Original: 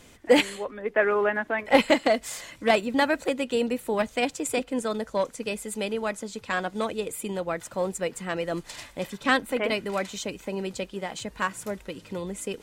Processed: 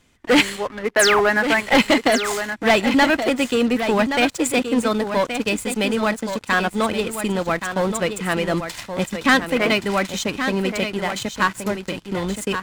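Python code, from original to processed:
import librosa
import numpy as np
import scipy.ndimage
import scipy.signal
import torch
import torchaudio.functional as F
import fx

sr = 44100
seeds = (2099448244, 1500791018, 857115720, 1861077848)

p1 = fx.high_shelf(x, sr, hz=6700.0, db=-6.5)
p2 = fx.spec_paint(p1, sr, seeds[0], shape='fall', start_s=0.99, length_s=0.22, low_hz=560.0, high_hz=12000.0, level_db=-28.0)
p3 = fx.leveller(p2, sr, passes=3)
p4 = fx.peak_eq(p3, sr, hz=510.0, db=-6.0, octaves=1.1)
y = p4 + fx.echo_single(p4, sr, ms=1124, db=-8.5, dry=0)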